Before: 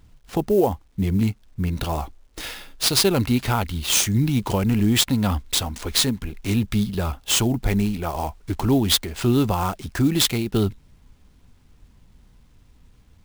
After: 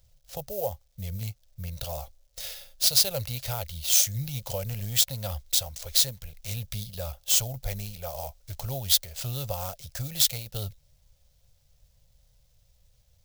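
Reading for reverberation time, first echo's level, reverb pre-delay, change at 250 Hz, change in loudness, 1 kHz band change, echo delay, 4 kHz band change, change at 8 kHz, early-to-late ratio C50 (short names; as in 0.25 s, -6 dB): none, none, none, -23.5 dB, -5.0 dB, -13.0 dB, none, -4.0 dB, -1.0 dB, none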